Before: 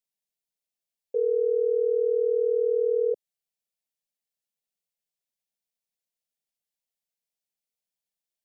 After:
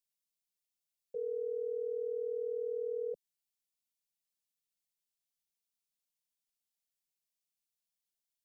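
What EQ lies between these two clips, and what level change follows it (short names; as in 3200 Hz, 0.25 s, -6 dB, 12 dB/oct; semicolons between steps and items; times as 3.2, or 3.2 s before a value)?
bell 460 Hz -11.5 dB 1.9 oct; fixed phaser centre 330 Hz, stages 6; 0.0 dB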